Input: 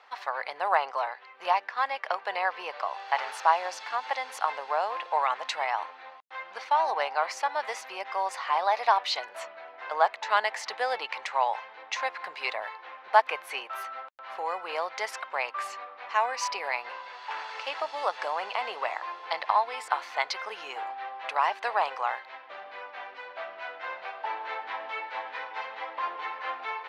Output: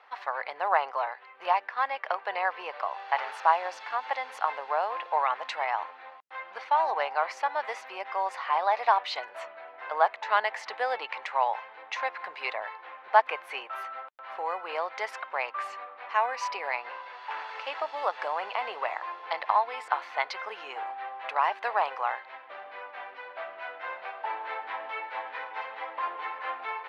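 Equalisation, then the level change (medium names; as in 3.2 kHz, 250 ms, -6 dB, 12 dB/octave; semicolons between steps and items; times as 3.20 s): tone controls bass -4 dB, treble -11 dB; 0.0 dB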